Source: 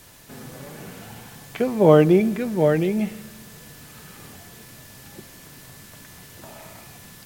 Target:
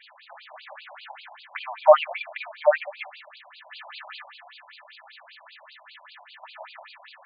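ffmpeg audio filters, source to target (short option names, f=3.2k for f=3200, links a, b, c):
-filter_complex "[0:a]asplit=3[a][b][c];[a]afade=t=out:st=3.7:d=0.02[d];[b]acontrast=53,afade=t=in:st=3.7:d=0.02,afade=t=out:st=4.21:d=0.02[e];[c]afade=t=in:st=4.21:d=0.02[f];[d][e][f]amix=inputs=3:normalize=0,afftfilt=real='re*between(b*sr/1024,730*pow(3500/730,0.5+0.5*sin(2*PI*5.1*pts/sr))/1.41,730*pow(3500/730,0.5+0.5*sin(2*PI*5.1*pts/sr))*1.41)':imag='im*between(b*sr/1024,730*pow(3500/730,0.5+0.5*sin(2*PI*5.1*pts/sr))/1.41,730*pow(3500/730,0.5+0.5*sin(2*PI*5.1*pts/sr))*1.41)':win_size=1024:overlap=0.75,volume=7dB"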